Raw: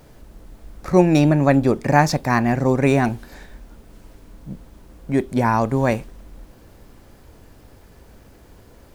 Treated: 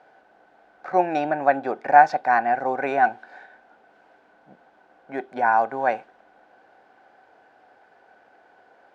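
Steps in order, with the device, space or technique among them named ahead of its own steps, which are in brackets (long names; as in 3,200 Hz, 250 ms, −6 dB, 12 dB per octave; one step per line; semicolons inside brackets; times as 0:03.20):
tin-can telephone (band-pass filter 470–2,800 Hz; hollow resonant body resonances 760/1,500 Hz, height 15 dB, ringing for 30 ms)
level −5.5 dB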